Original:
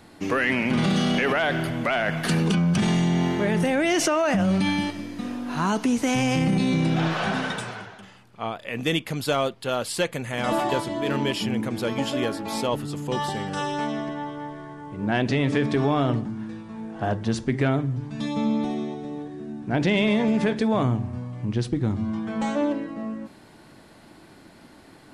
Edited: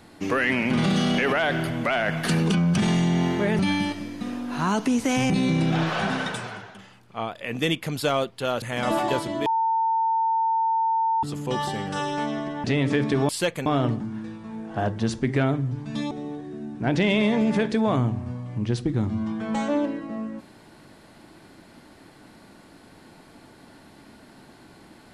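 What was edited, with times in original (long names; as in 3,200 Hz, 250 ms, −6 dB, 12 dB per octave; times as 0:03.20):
0:03.59–0:04.57: remove
0:06.28–0:06.54: remove
0:09.86–0:10.23: move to 0:15.91
0:11.07–0:12.84: beep over 900 Hz −19.5 dBFS
0:14.25–0:15.26: remove
0:18.36–0:18.98: remove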